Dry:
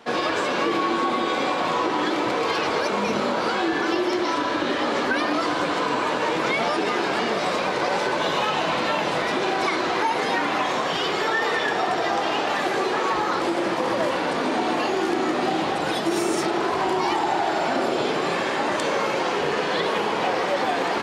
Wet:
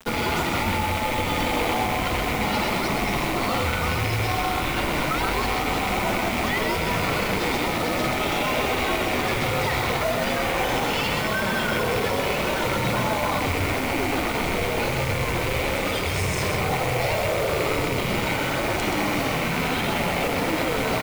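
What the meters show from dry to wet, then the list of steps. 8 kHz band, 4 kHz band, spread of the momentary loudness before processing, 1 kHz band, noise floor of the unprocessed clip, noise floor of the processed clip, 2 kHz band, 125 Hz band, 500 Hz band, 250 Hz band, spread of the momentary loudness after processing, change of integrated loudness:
+4.0 dB, 0.0 dB, 1 LU, −2.5 dB, −25 dBFS, −26 dBFS, +0.5 dB, +11.5 dB, −2.0 dB, −1.5 dB, 1 LU, −0.5 dB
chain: loose part that buzzes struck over −35 dBFS, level −16 dBFS
low-shelf EQ 140 Hz −10.5 dB
notch filter 1,900 Hz, Q 14
brickwall limiter −19.5 dBFS, peak gain reduction 9.5 dB
bit reduction 7 bits
frequency shifter −250 Hz
noise that follows the level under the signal 18 dB
single-tap delay 128 ms −5 dB
level +3.5 dB

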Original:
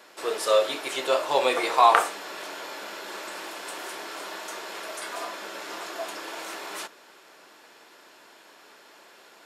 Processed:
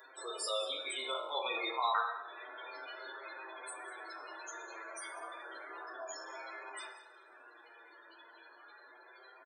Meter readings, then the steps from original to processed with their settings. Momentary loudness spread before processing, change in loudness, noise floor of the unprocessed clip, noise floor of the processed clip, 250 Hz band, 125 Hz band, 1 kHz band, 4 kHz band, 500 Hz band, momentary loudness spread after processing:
16 LU, −12.5 dB, −53 dBFS, −59 dBFS, −15.0 dB, can't be measured, −13.5 dB, −8.0 dB, −16.0 dB, 22 LU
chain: peak hold with a decay on every bin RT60 0.67 s
notch filter 2,700 Hz, Q 17
spectral peaks only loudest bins 32
first-order pre-emphasis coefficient 0.9
hum removal 63.57 Hz, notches 20
flanger 0.31 Hz, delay 7.5 ms, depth 1.4 ms, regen +32%
on a send: single-tap delay 193 ms −18.5 dB
on the sum: coupled-rooms reverb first 0.6 s, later 2.4 s, from −27 dB, DRR 7.5 dB
multiband upward and downward compressor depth 40%
level +7 dB

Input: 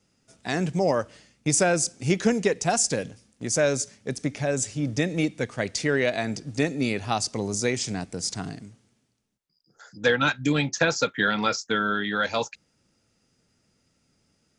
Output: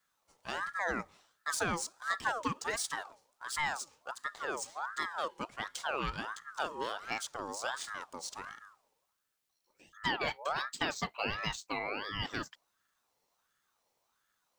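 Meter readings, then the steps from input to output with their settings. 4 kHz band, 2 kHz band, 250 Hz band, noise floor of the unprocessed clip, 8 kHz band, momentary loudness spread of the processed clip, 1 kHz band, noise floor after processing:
−8.5 dB, −8.5 dB, −18.5 dB, −70 dBFS, −14.0 dB, 8 LU, −6.0 dB, −80 dBFS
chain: running median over 3 samples
bit-depth reduction 12 bits, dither triangular
ring modulator whose carrier an LFO sweeps 1,100 Hz, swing 40%, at 1.4 Hz
level −9 dB

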